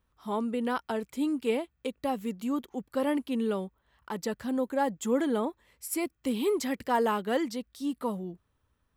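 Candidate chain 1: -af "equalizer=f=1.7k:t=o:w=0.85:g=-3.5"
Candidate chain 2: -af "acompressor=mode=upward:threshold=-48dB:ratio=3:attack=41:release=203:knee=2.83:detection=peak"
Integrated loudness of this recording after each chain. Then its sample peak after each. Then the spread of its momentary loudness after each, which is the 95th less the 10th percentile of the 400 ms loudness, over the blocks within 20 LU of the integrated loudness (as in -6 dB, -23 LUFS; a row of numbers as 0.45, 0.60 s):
-31.5, -31.0 LUFS; -16.0, -15.0 dBFS; 7, 8 LU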